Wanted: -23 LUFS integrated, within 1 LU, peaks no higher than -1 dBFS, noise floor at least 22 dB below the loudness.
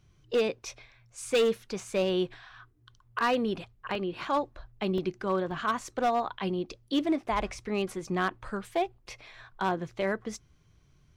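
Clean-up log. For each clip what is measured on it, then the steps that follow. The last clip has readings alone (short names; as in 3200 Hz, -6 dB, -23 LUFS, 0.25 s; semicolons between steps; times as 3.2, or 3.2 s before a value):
clipped 0.9%; flat tops at -20.0 dBFS; dropouts 3; longest dropout 2.1 ms; loudness -31.0 LUFS; peak -20.0 dBFS; loudness target -23.0 LUFS
-> clip repair -20 dBFS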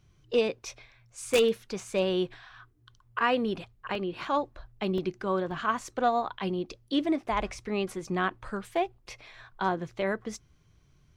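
clipped 0.0%; dropouts 3; longest dropout 2.1 ms
-> interpolate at 3.95/4.98/5.51, 2.1 ms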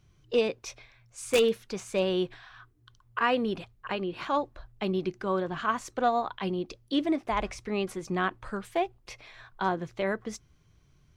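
dropouts 0; loudness -30.5 LUFS; peak -11.0 dBFS; loudness target -23.0 LUFS
-> gain +7.5 dB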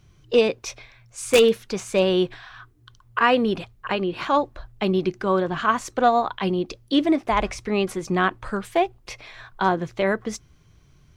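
loudness -23.0 LUFS; peak -3.5 dBFS; noise floor -56 dBFS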